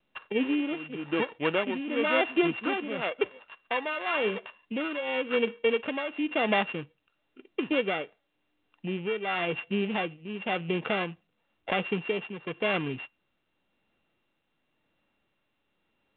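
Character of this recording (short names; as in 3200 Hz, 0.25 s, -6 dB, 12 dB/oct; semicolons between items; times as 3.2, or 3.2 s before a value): a buzz of ramps at a fixed pitch in blocks of 16 samples; tremolo triangle 0.95 Hz, depth 75%; µ-law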